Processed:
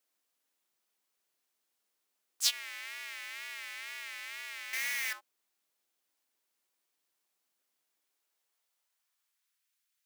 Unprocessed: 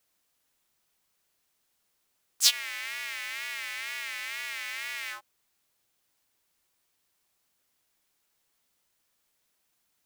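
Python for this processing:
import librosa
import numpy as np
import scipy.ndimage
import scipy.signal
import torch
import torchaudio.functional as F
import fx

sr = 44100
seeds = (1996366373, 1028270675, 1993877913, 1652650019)

y = fx.leveller(x, sr, passes=5, at=(4.73, 5.13))
y = fx.filter_sweep_highpass(y, sr, from_hz=260.0, to_hz=1700.0, start_s=7.95, end_s=9.69, q=0.9)
y = y * 10.0 ** (-7.0 / 20.0)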